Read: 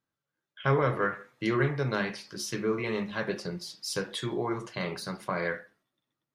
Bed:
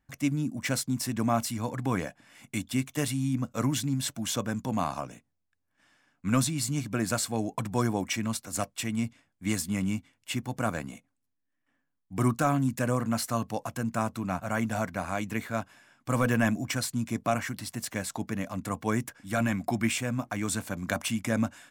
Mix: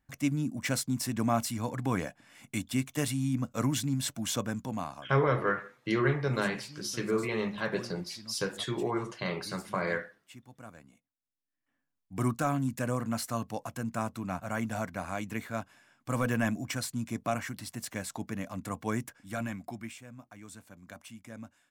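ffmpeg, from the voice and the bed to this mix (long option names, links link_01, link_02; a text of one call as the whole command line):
ffmpeg -i stem1.wav -i stem2.wav -filter_complex "[0:a]adelay=4450,volume=-0.5dB[link_01];[1:a]volume=13.5dB,afade=type=out:start_time=4.41:duration=0.74:silence=0.133352,afade=type=in:start_time=11.16:duration=0.78:silence=0.177828,afade=type=out:start_time=18.96:duration=1.01:silence=0.199526[link_02];[link_01][link_02]amix=inputs=2:normalize=0" out.wav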